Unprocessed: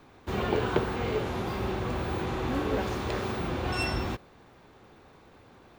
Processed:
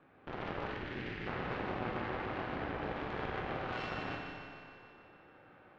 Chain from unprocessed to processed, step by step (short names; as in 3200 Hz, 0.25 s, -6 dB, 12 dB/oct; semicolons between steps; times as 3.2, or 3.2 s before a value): 2.23–3.46 octaver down 2 oct, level 0 dB; compressor, threshold -33 dBFS, peak gain reduction 13 dB; limiter -30 dBFS, peak gain reduction 8 dB; speaker cabinet 150–2300 Hz, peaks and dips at 220 Hz -9 dB, 390 Hz -7 dB, 700 Hz -4 dB, 990 Hz -9 dB, 2100 Hz -5 dB; on a send: thinning echo 0.15 s, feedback 71%, high-pass 210 Hz, level -6 dB; on the sum: added harmonics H 3 -18 dB, 4 -11 dB, 7 -28 dB, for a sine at -29 dBFS; 0.71–1.27 band shelf 770 Hz -14 dB; Schroeder reverb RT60 1.9 s, combs from 30 ms, DRR 1.5 dB; gain +4.5 dB